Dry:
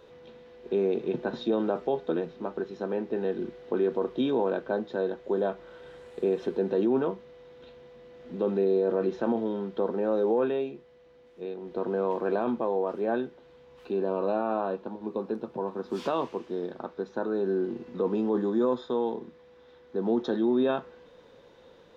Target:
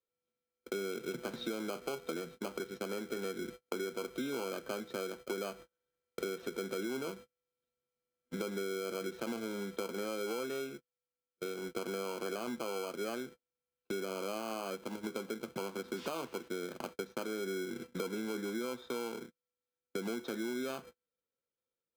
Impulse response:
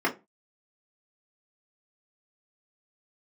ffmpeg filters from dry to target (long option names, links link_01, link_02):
-filter_complex "[0:a]agate=range=-43dB:threshold=-40dB:ratio=16:detection=peak,acrossover=split=170|890[link_01][link_02][link_03];[link_02]acrusher=samples=24:mix=1:aa=0.000001[link_04];[link_01][link_04][link_03]amix=inputs=3:normalize=0,acompressor=threshold=-37dB:ratio=6,volume=1dB"